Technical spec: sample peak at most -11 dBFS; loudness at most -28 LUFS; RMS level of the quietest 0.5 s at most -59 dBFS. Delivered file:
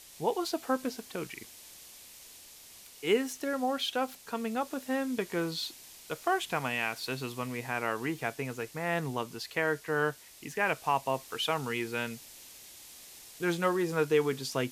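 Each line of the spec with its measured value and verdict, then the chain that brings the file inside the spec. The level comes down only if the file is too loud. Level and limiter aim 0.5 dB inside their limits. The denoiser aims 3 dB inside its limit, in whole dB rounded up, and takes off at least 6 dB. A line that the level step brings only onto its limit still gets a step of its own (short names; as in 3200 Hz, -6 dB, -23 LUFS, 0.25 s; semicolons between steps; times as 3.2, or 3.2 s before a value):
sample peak -15.5 dBFS: OK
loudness -32.5 LUFS: OK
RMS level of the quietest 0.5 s -52 dBFS: fail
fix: denoiser 10 dB, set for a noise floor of -52 dBFS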